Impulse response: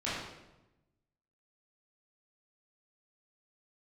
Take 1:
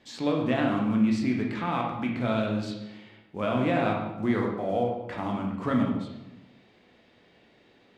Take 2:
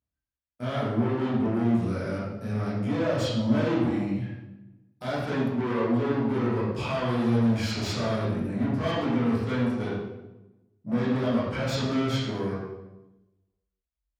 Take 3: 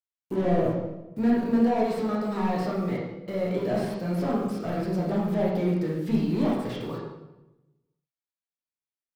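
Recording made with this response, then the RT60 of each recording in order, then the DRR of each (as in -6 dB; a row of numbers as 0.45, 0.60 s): 2; 1.0, 1.0, 1.0 s; -0.5, -10.5, -5.0 dB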